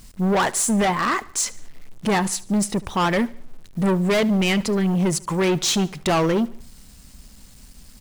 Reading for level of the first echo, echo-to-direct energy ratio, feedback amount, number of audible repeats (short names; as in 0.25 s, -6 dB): -21.0 dB, -20.0 dB, 46%, 3